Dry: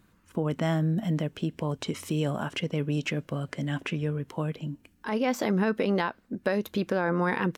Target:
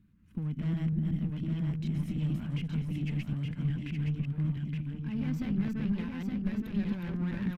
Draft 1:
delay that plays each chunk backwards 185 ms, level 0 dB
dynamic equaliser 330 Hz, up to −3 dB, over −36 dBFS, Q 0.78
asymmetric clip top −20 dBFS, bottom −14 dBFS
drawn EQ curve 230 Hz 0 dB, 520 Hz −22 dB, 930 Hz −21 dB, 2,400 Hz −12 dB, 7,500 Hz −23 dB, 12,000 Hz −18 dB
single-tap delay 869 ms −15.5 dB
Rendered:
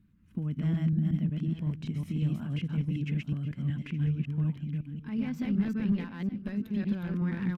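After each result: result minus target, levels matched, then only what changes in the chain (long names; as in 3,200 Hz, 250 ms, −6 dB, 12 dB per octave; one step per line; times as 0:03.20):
echo-to-direct −11.5 dB; asymmetric clip: distortion −11 dB
change: single-tap delay 869 ms −4 dB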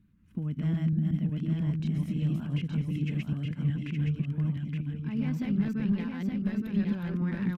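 asymmetric clip: distortion −11 dB
change: asymmetric clip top −31.5 dBFS, bottom −14 dBFS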